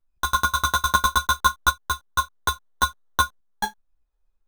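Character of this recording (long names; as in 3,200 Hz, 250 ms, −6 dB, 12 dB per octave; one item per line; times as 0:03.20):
tremolo saw up 0.59 Hz, depth 45%
aliases and images of a low sample rate 2,500 Hz, jitter 0%
a shimmering, thickened sound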